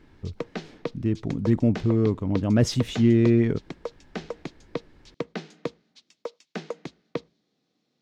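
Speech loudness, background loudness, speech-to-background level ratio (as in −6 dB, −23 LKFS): −23.0 LKFS, −37.5 LKFS, 14.5 dB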